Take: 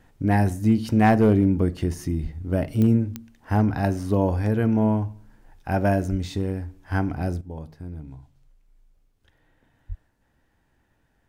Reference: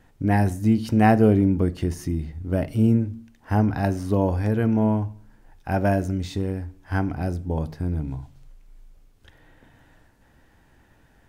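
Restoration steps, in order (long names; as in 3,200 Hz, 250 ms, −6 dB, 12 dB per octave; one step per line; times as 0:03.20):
clipped peaks rebuilt −10 dBFS
click removal
0:02.22–0:02.34: high-pass filter 140 Hz 24 dB per octave
0:06.10–0:06.22: high-pass filter 140 Hz 24 dB per octave
0:07.41: level correction +10 dB
0:09.88–0:10.00: high-pass filter 140 Hz 24 dB per octave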